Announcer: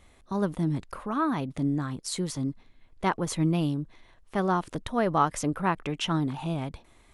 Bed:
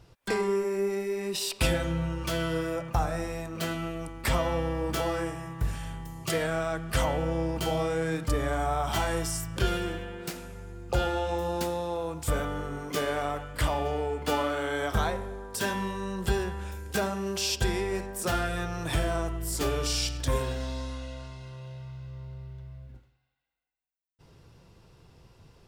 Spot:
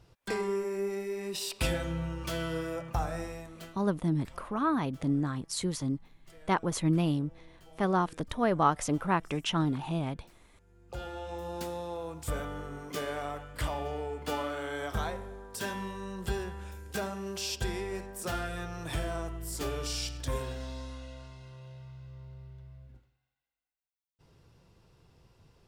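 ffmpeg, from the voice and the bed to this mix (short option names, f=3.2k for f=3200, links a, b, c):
-filter_complex "[0:a]adelay=3450,volume=-1.5dB[a];[1:a]volume=17.5dB,afade=t=out:st=3.21:d=0.57:silence=0.0668344,afade=t=in:st=10.52:d=1.26:silence=0.0794328[b];[a][b]amix=inputs=2:normalize=0"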